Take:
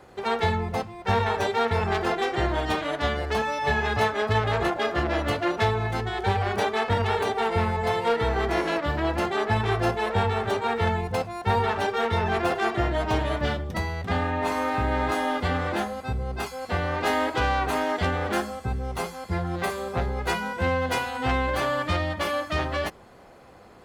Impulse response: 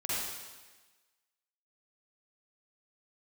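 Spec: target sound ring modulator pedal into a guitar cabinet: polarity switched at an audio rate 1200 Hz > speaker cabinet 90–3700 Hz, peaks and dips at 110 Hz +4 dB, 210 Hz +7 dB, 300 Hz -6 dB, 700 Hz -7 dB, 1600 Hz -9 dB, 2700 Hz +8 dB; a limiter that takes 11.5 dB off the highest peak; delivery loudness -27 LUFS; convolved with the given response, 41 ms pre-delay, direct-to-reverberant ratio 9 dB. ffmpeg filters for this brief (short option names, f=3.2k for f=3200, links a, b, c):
-filter_complex "[0:a]alimiter=level_in=1dB:limit=-24dB:level=0:latency=1,volume=-1dB,asplit=2[a][b];[1:a]atrim=start_sample=2205,adelay=41[c];[b][c]afir=irnorm=-1:irlink=0,volume=-15.5dB[d];[a][d]amix=inputs=2:normalize=0,aeval=exprs='val(0)*sgn(sin(2*PI*1200*n/s))':c=same,highpass=90,equalizer=f=110:t=q:w=4:g=4,equalizer=f=210:t=q:w=4:g=7,equalizer=f=300:t=q:w=4:g=-6,equalizer=f=700:t=q:w=4:g=-7,equalizer=f=1.6k:t=q:w=4:g=-9,equalizer=f=2.7k:t=q:w=4:g=8,lowpass=f=3.7k:w=0.5412,lowpass=f=3.7k:w=1.3066,volume=5.5dB"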